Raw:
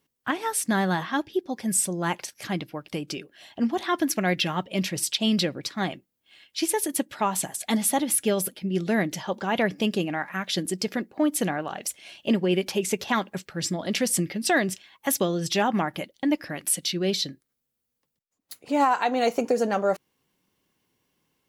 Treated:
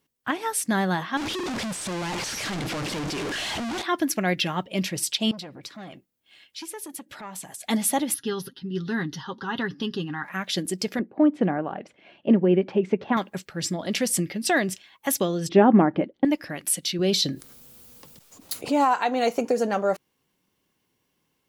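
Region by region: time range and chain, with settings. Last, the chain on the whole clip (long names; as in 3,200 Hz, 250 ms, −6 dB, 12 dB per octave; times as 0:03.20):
0:01.17–0:03.82: sign of each sample alone + low-pass filter 7,300 Hz
0:05.31–0:07.64: downward compressor 2.5 to 1, threshold −37 dBFS + saturating transformer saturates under 920 Hz
0:08.14–0:10.24: low-pass filter 7,400 Hz + phaser with its sweep stopped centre 2,300 Hz, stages 6 + comb filter 7.4 ms, depth 46%
0:10.99–0:13.17: band-pass filter 190–2,300 Hz + spectral tilt −3 dB per octave
0:15.49–0:16.25: low-pass filter 1,900 Hz + parametric band 310 Hz +13 dB 1.9 octaves
0:16.99–0:18.94: parametric band 1,900 Hz −4.5 dB 0.6 octaves + envelope flattener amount 50%
whole clip: no processing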